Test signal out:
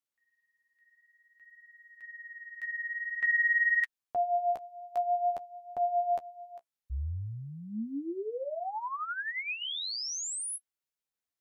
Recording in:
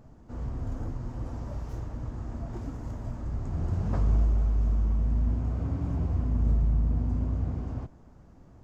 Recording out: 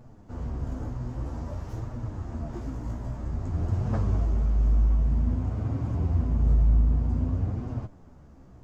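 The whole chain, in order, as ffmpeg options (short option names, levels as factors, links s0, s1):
-af "flanger=delay=7.9:depth=9.4:regen=18:speed=0.52:shape=triangular,volume=1.88"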